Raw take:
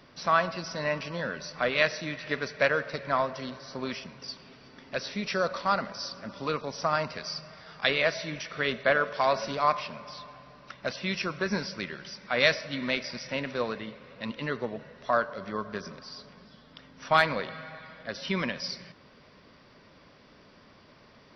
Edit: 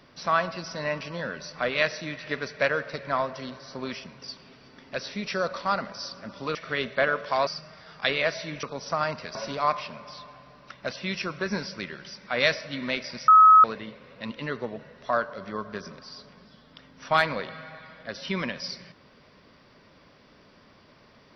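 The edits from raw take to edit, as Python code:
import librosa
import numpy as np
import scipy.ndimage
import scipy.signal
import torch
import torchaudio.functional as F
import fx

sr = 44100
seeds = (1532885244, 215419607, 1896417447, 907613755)

y = fx.edit(x, sr, fx.swap(start_s=6.55, length_s=0.72, other_s=8.43, other_length_s=0.92),
    fx.bleep(start_s=13.28, length_s=0.36, hz=1280.0, db=-10.0), tone=tone)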